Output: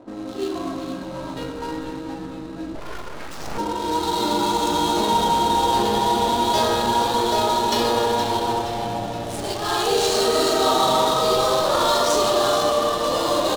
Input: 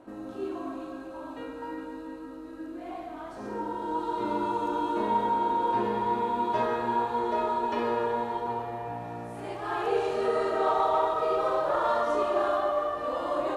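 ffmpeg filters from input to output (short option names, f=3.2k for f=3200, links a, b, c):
-filter_complex "[0:a]asplit=2[a][b];[b]alimiter=limit=-21.5dB:level=0:latency=1:release=37,volume=3dB[c];[a][c]amix=inputs=2:normalize=0,aexciter=amount=13.2:drive=5.2:freq=3.5k,adynamicsmooth=sensitivity=7:basefreq=630,asplit=7[d][e][f][g][h][i][j];[e]adelay=471,afreqshift=-130,volume=-9dB[k];[f]adelay=942,afreqshift=-260,volume=-14.7dB[l];[g]adelay=1413,afreqshift=-390,volume=-20.4dB[m];[h]adelay=1884,afreqshift=-520,volume=-26dB[n];[i]adelay=2355,afreqshift=-650,volume=-31.7dB[o];[j]adelay=2826,afreqshift=-780,volume=-37.4dB[p];[d][k][l][m][n][o][p]amix=inputs=7:normalize=0,asettb=1/sr,asplit=3[q][r][s];[q]atrim=end=2.754[t];[r]atrim=start=2.75:end=3.58,asetpts=PTS-STARTPTS,afade=t=in:d=0.004:c=qsin,afade=t=out:st=0.826:d=0.004:c=qsin,aeval=exprs='abs(val(0))':c=same[u];[s]atrim=start=3.576[v];[t][u]acrossfade=d=0.004:c1=hsin:c2=qsin[w];[w][v]acrossfade=d=0.004:c1=qsin:c2=hsin"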